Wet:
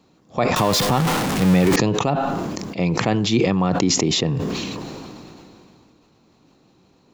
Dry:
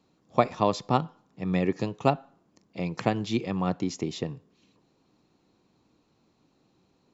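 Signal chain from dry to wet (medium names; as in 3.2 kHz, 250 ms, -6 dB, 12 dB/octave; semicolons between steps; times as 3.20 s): 0.56–1.76 s: jump at every zero crossing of -25.5 dBFS; loudness maximiser +16.5 dB; decay stretcher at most 21 dB/s; trim -7 dB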